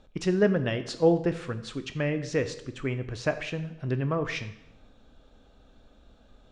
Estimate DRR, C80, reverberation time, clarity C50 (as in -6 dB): 9.0 dB, 14.5 dB, 0.85 s, 12.5 dB